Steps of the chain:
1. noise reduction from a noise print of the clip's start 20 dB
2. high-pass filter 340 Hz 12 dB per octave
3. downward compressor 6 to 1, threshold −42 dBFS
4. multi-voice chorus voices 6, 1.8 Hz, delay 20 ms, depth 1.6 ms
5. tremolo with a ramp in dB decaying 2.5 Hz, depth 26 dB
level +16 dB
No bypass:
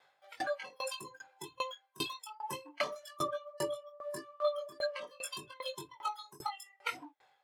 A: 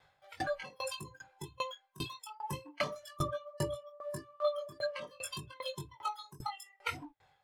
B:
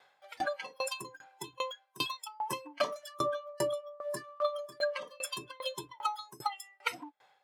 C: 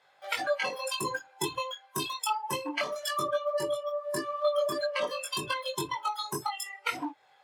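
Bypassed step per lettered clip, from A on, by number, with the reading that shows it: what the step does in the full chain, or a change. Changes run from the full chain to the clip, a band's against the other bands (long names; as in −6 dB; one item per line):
2, 125 Hz band +13.0 dB
4, change in integrated loudness +3.0 LU
5, change in crest factor −4.0 dB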